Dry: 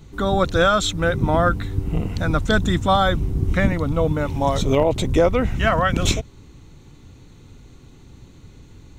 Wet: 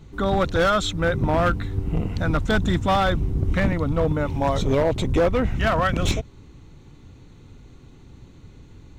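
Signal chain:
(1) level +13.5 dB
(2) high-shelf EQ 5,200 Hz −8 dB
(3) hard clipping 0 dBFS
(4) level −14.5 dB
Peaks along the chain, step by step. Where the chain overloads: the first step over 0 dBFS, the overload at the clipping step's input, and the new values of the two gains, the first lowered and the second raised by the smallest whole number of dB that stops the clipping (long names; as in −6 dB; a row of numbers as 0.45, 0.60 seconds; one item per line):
+7.5, +7.0, 0.0, −14.5 dBFS
step 1, 7.0 dB
step 1 +6.5 dB, step 4 −7.5 dB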